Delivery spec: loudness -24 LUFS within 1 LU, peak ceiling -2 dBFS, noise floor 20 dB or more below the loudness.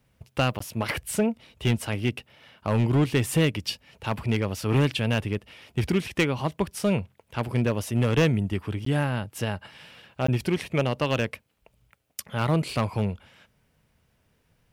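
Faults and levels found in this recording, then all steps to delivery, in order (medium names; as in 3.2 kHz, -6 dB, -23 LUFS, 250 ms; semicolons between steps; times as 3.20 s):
clipped samples 1.0%; clipping level -15.5 dBFS; dropouts 3; longest dropout 14 ms; loudness -26.5 LUFS; peak level -15.5 dBFS; loudness target -24.0 LUFS
-> clip repair -15.5 dBFS; interpolate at 0.59/8.85/10.27 s, 14 ms; trim +2.5 dB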